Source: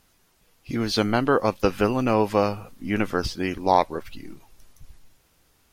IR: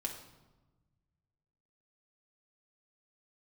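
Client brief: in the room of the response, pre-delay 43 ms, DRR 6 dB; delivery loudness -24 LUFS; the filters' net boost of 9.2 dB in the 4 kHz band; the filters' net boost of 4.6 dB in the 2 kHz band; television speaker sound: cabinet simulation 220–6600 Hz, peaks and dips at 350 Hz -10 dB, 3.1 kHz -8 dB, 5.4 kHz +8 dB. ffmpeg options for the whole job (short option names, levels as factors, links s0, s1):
-filter_complex "[0:a]equalizer=f=2000:t=o:g=5,equalizer=f=4000:t=o:g=9,asplit=2[s0][s1];[1:a]atrim=start_sample=2205,adelay=43[s2];[s1][s2]afir=irnorm=-1:irlink=0,volume=0.473[s3];[s0][s3]amix=inputs=2:normalize=0,highpass=f=220:w=0.5412,highpass=f=220:w=1.3066,equalizer=f=350:t=q:w=4:g=-10,equalizer=f=3100:t=q:w=4:g=-8,equalizer=f=5400:t=q:w=4:g=8,lowpass=f=6600:w=0.5412,lowpass=f=6600:w=1.3066,volume=0.794"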